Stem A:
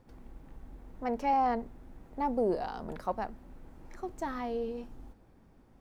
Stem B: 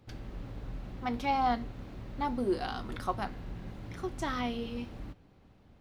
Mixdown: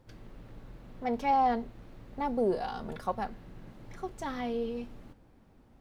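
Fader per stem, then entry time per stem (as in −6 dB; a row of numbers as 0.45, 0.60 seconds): −0.5, −7.0 decibels; 0.00, 0.00 seconds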